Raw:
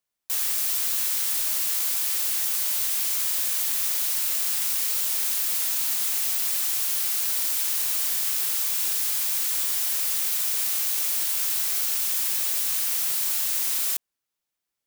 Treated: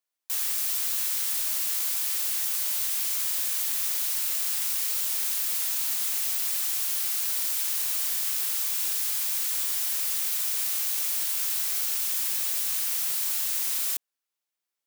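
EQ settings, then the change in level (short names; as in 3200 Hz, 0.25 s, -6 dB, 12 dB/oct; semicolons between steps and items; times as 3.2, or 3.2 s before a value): HPF 400 Hz 6 dB/oct; -2.5 dB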